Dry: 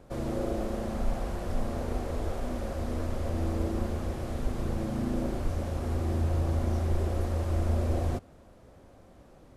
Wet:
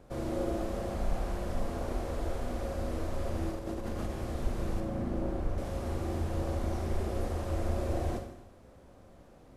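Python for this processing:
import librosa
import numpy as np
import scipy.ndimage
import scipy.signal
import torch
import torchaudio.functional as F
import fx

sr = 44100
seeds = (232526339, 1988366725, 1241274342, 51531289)

y = fx.over_compress(x, sr, threshold_db=-33.0, ratio=-1.0, at=(3.51, 4.1))
y = fx.high_shelf(y, sr, hz=2700.0, db=-11.0, at=(4.8, 5.58))
y = fx.rev_schroeder(y, sr, rt60_s=0.86, comb_ms=31, drr_db=4.5)
y = y * librosa.db_to_amplitude(-2.5)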